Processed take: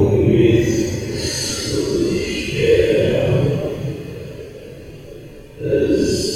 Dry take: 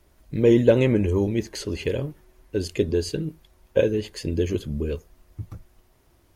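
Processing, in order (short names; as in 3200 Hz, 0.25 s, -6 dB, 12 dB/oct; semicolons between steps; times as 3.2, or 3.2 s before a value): two-slope reverb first 0.46 s, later 2.4 s, from -19 dB, DRR -10 dB; Paulstretch 4.5×, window 0.05 s, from 1.29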